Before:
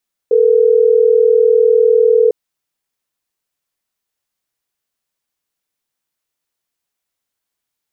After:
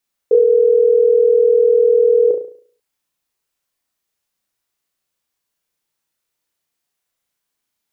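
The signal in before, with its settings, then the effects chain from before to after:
call progress tone ringback tone, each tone -10 dBFS
flutter echo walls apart 6 m, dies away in 0.49 s

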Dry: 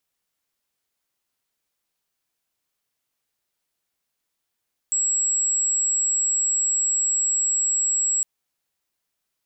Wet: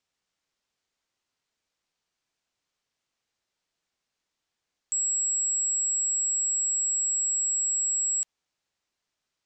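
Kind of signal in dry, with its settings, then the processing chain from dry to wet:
tone sine 7700 Hz -19 dBFS 3.31 s
LPF 7200 Hz 24 dB/oct

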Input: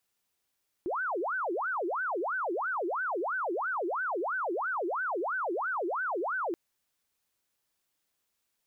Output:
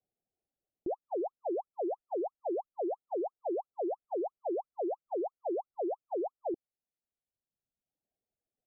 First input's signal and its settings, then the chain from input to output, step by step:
siren wail 334–1540 Hz 3/s sine -29 dBFS 5.68 s
steep low-pass 800 Hz 96 dB/oct; reverb removal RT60 1.3 s

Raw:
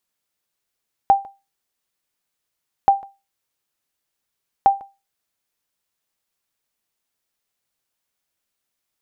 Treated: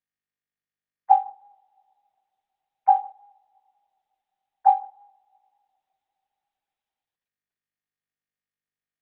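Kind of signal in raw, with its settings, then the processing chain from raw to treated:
sonar ping 790 Hz, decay 0.26 s, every 1.78 s, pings 3, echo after 0.15 s, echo -23.5 dB -5 dBFS
sine-wave speech; two-slope reverb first 0.65 s, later 2.9 s, from -21 dB, DRR 18.5 dB; Opus 6 kbps 48000 Hz

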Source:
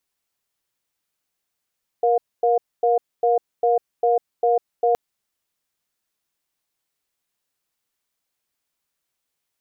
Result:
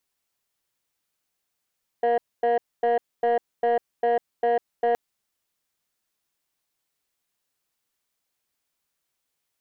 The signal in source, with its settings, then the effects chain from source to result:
cadence 473 Hz, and 710 Hz, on 0.15 s, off 0.25 s, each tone -17.5 dBFS 2.92 s
soft clip -17 dBFS

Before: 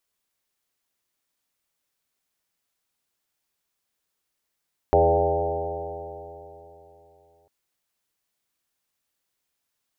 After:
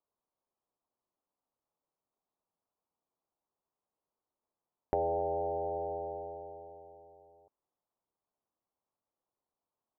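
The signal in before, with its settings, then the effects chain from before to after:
stretched partials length 2.55 s, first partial 80.4 Hz, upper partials -9/-18/-7/4/0.5/3/-1/2.5/-8 dB, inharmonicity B 0.0023, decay 3.32 s, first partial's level -23 dB
steep low-pass 1100 Hz 36 dB/oct; low shelf 220 Hz -9 dB; compressor 3:1, threshold -32 dBFS

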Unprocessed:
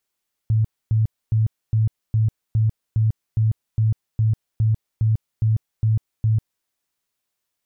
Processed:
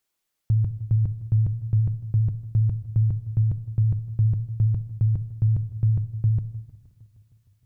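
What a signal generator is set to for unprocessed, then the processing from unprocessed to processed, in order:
tone bursts 110 Hz, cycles 16, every 0.41 s, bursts 15, -14.5 dBFS
shoebox room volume 1900 m³, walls furnished, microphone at 0.62 m; warbling echo 0.155 s, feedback 75%, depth 166 cents, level -20.5 dB

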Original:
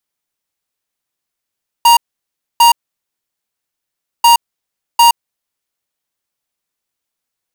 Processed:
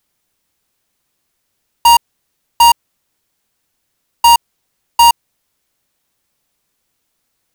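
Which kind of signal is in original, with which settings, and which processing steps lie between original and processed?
beep pattern square 940 Hz, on 0.12 s, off 0.63 s, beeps 2, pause 1.52 s, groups 2, -6.5 dBFS
G.711 law mismatch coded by mu; low shelf 340 Hz +6.5 dB

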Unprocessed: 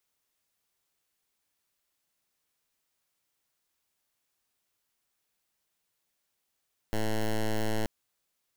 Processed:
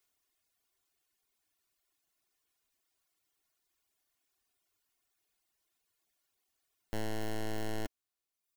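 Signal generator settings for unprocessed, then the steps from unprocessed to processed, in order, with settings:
pulse 109 Hz, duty 9% -27.5 dBFS 0.93 s
reverb removal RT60 1.1 s; comb 2.8 ms, depth 44%; overloaded stage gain 32.5 dB

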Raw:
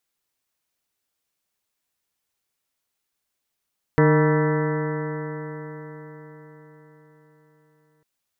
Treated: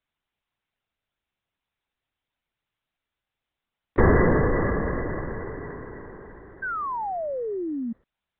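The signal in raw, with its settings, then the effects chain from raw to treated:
stretched partials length 4.05 s, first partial 151 Hz, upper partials -4/-1/-12.5/-18.5/-9/-15.5/-14/-16/-12/-14 dB, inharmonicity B 0.0035, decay 4.88 s, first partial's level -16 dB
LPC vocoder at 8 kHz whisper; painted sound fall, 6.62–7.93, 220–1600 Hz -29 dBFS

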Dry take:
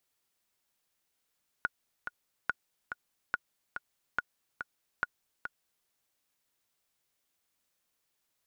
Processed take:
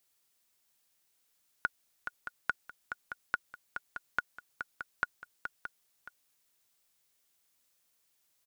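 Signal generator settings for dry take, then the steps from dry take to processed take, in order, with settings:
metronome 142 bpm, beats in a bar 2, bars 5, 1450 Hz, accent 8 dB -15.5 dBFS
high shelf 3500 Hz +6.5 dB; on a send: echo 0.622 s -10.5 dB

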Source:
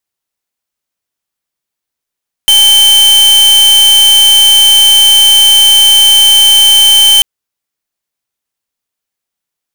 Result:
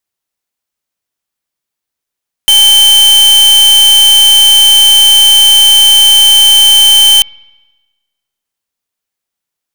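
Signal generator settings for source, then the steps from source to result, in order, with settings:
pulse 3090 Hz, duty 45% -4.5 dBFS 4.74 s
spring tank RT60 1.2 s, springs 53 ms, chirp 70 ms, DRR 19.5 dB

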